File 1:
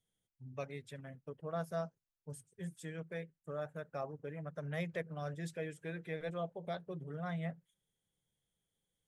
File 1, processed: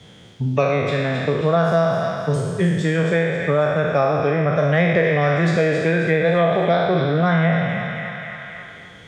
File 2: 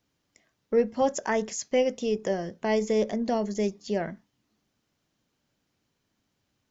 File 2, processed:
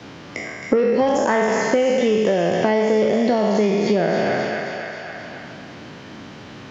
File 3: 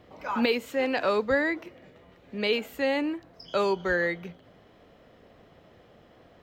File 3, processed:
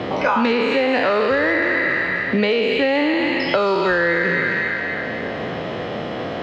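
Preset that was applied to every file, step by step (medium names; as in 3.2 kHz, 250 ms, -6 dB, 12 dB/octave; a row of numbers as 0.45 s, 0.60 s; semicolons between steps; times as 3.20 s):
spectral sustain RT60 1.29 s; feedback echo behind a high-pass 267 ms, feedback 42%, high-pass 1.5 kHz, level -6.5 dB; saturation -15 dBFS; compression, threshold -32 dBFS; high-pass 80 Hz; distance through air 160 m; three bands compressed up and down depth 70%; normalise loudness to -19 LUFS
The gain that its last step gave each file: +22.0 dB, +17.0 dB, +17.0 dB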